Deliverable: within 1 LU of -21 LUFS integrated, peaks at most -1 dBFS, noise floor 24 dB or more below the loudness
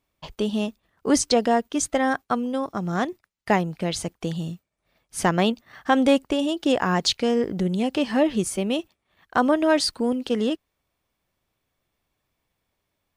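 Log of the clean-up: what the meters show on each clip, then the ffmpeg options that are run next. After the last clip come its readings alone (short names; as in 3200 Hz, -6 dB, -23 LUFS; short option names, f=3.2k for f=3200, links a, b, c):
loudness -23.5 LUFS; peak -7.5 dBFS; loudness target -21.0 LUFS
-> -af "volume=2.5dB"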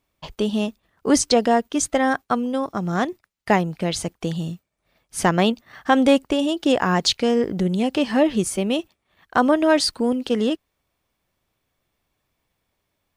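loudness -21.0 LUFS; peak -5.0 dBFS; noise floor -76 dBFS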